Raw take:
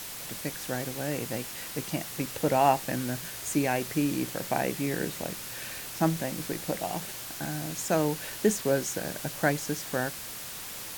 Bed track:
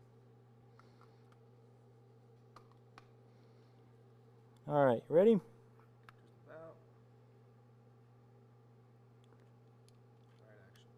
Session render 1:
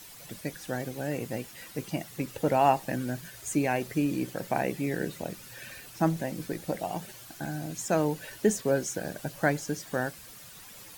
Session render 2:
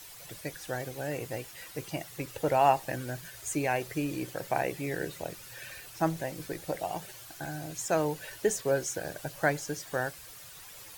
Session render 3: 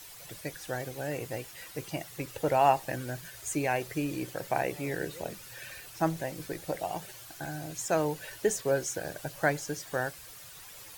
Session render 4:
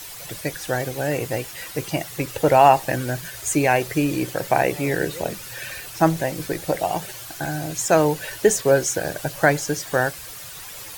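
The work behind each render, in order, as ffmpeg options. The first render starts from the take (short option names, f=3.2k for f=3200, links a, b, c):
-af "afftdn=nr=11:nf=-40"
-af "equalizer=f=220:w=2.1:g=-13"
-filter_complex "[1:a]volume=-21dB[a];[0:a][a]amix=inputs=2:normalize=0"
-af "volume=11dB,alimiter=limit=-3dB:level=0:latency=1"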